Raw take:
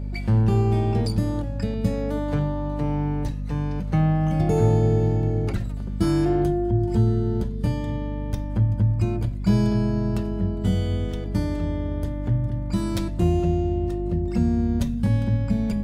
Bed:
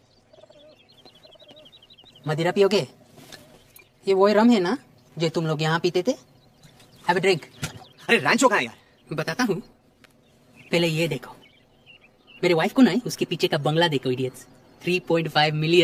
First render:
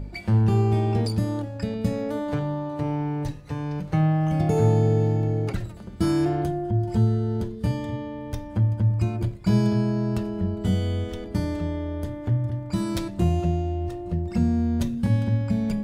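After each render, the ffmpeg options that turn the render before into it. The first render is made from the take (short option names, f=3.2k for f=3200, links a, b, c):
-af "bandreject=f=50:t=h:w=4,bandreject=f=100:t=h:w=4,bandreject=f=150:t=h:w=4,bandreject=f=200:t=h:w=4,bandreject=f=250:t=h:w=4,bandreject=f=300:t=h:w=4,bandreject=f=350:t=h:w=4,bandreject=f=400:t=h:w=4,bandreject=f=450:t=h:w=4,bandreject=f=500:t=h:w=4,bandreject=f=550:t=h:w=4"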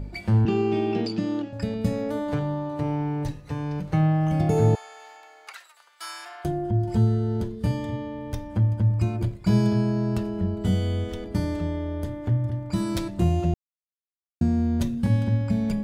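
-filter_complex "[0:a]asettb=1/sr,asplit=3[a][b][c];[a]atrim=end=0.454[d];[b]atrim=start=0.45:end=1.53,asetpts=PTS-STARTPTS,afade=t=in:d=0.004:c=qsin,afade=t=out:st=1.076:d=0.004:c=qsin,highpass=f=160:w=0.5412,highpass=f=160:w=1.3066,equalizer=f=350:t=q:w=4:g=8,equalizer=f=520:t=q:w=4:g=-6,equalizer=f=960:t=q:w=4:g=-5,equalizer=f=2.8k:t=q:w=4:g=9,lowpass=f=6.2k:w=0.5412,lowpass=f=6.2k:w=1.3066[e];[c]atrim=start=1.526[f];[d][e]acrossfade=d=0.004:c1=hsin:c2=qsin[g];[g][f]acrossfade=d=0.004:c1=qsin:c2=hsin,asettb=1/sr,asplit=3[h][i][j];[h]atrim=end=4.754[k];[i]atrim=start=4.75:end=6.45,asetpts=PTS-STARTPTS,afade=t=in:d=0.004:c=qsin,afade=t=out:st=1.696:d=0.004:c=qsin,highpass=f=1k:w=0.5412,highpass=f=1k:w=1.3066[l];[j]atrim=start=6.446[m];[k][l]acrossfade=d=0.004:c1=hsin:c2=qsin[n];[n][m]acrossfade=d=0.004:c1=qsin:c2=hsin,asplit=3[o][p][q];[o]atrim=end=13.54,asetpts=PTS-STARTPTS,afade=t=out:st=13.536:d=0.004:c=hsin[r];[p]atrim=start=13.54:end=14.41,asetpts=PTS-STARTPTS,volume=0[s];[q]atrim=start=14.41,asetpts=PTS-STARTPTS,afade=t=in:d=0.004:c=hsin[t];[r][s][t]concat=n=3:v=0:a=1"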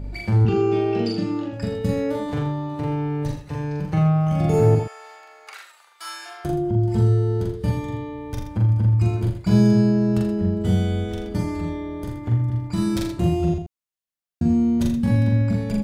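-filter_complex "[0:a]asplit=2[a][b];[b]adelay=43,volume=-2dB[c];[a][c]amix=inputs=2:normalize=0,aecho=1:1:82:0.376"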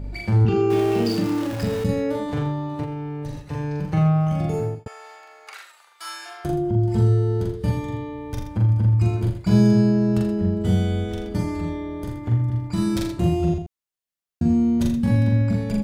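-filter_complex "[0:a]asettb=1/sr,asplit=3[a][b][c];[a]atrim=end=0.704[d];[b]atrim=start=0.7:end=1.84,asetpts=PTS-STARTPTS,afade=t=in:d=0.004:c=qsin,afade=t=out:st=1.136:d=0.004:c=qsin,aeval=exprs='val(0)+0.5*0.0398*sgn(val(0))':c=same[e];[c]atrim=start=1.836[f];[d][e]acrossfade=d=0.004:c1=hsin:c2=qsin[g];[g][f]acrossfade=d=0.004:c1=qsin:c2=hsin,asettb=1/sr,asplit=3[h][i][j];[h]atrim=end=2.834[k];[i]atrim=start=2.83:end=3.39,asetpts=PTS-STARTPTS,afade=t=in:d=0.004:c=qsin,afade=t=out:st=0.556:d=0.004:c=qsin,acompressor=threshold=-26dB:ratio=6:attack=3.2:release=140:knee=1:detection=peak[l];[j]atrim=start=3.386[m];[k][l]acrossfade=d=0.004:c1=hsin:c2=qsin[n];[n][m]acrossfade=d=0.004:c1=qsin:c2=hsin,asplit=2[o][p];[o]atrim=end=4.86,asetpts=PTS-STARTPTS,afade=t=out:st=4.23:d=0.63[q];[p]atrim=start=4.86,asetpts=PTS-STARTPTS,afade=t=in:d=0.004:c=hsin[r];[q][r]concat=n=2:v=0:a=1"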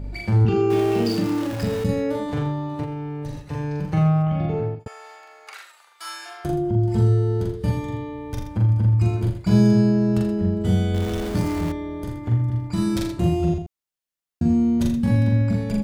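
-filter_complex "[0:a]asplit=3[a][b][c];[a]afade=t=out:st=4.22:d=0.02[d];[b]lowpass=f=3.7k:w=0.5412,lowpass=f=3.7k:w=1.3066,afade=t=in:st=4.22:d=0.02,afade=t=out:st=4.79:d=0.02[e];[c]afade=t=in:st=4.79:d=0.02[f];[d][e][f]amix=inputs=3:normalize=0,asettb=1/sr,asplit=3[g][h][i];[g]atrim=end=10.944[j];[h]atrim=start=10.94:end=11.72,asetpts=PTS-STARTPTS,afade=t=in:d=0.004:c=qsin,afade=t=out:st=0.776:d=0.004:c=qsin,aeval=exprs='val(0)+0.5*0.0398*sgn(val(0))':c=same[k];[i]atrim=start=11.716[l];[j][k]acrossfade=d=0.004:c1=hsin:c2=qsin[m];[m][l]acrossfade=d=0.004:c1=qsin:c2=hsin"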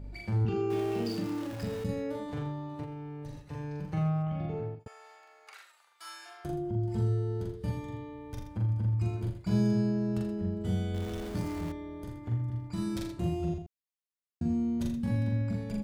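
-af "volume=-11dB"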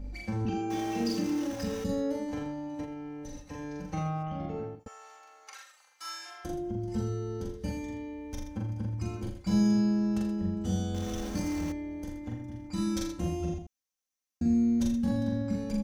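-af "equalizer=f=6k:t=o:w=0.24:g=12.5,aecho=1:1:3.8:0.91"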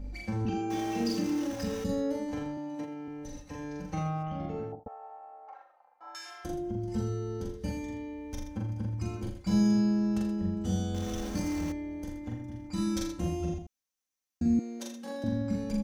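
-filter_complex "[0:a]asettb=1/sr,asplit=3[a][b][c];[a]atrim=end=2.574[d];[b]atrim=start=2.57:end=3.08,asetpts=PTS-STARTPTS,afade=t=in:d=0.004:c=qsin,afade=t=out:st=0.506:d=0.004:c=qsin,highpass=f=140:w=0.5412,highpass=f=140:w=1.3066[e];[c]atrim=start=3.076[f];[d][e]acrossfade=d=0.004:c1=hsin:c2=qsin[g];[g][f]acrossfade=d=0.004:c1=qsin:c2=hsin,asettb=1/sr,asplit=3[h][i][j];[h]atrim=end=4.724[k];[i]atrim=start=4.72:end=6.15,asetpts=PTS-STARTPTS,afade=t=in:d=0.004:c=qsin,afade=t=out:st=1.426:d=0.004:c=qsin,lowpass=f=750:t=q:w=4.3[l];[j]atrim=start=6.146[m];[k][l]acrossfade=d=0.004:c1=hsin:c2=qsin[n];[n][m]acrossfade=d=0.004:c1=qsin:c2=hsin,asettb=1/sr,asplit=3[o][p][q];[o]atrim=end=14.594[r];[p]atrim=start=14.59:end=15.24,asetpts=PTS-STARTPTS,afade=t=in:d=0.004:c=qsin,afade=t=out:st=0.646:d=0.004:c=qsin,highpass=f=360:w=0.5412,highpass=f=360:w=1.3066[s];[q]atrim=start=15.236[t];[r][s]acrossfade=d=0.004:c1=hsin:c2=qsin[u];[u][t]acrossfade=d=0.004:c1=qsin:c2=hsin"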